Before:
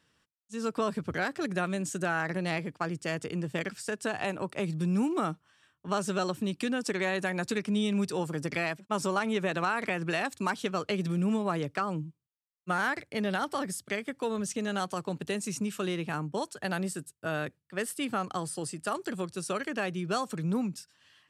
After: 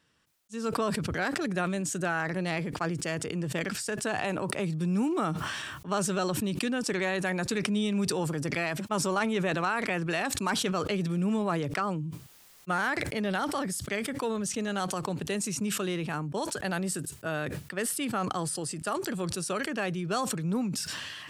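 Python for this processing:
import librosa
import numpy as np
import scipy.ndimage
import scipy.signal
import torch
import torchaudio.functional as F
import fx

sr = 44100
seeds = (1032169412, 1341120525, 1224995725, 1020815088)

y = fx.sustainer(x, sr, db_per_s=25.0)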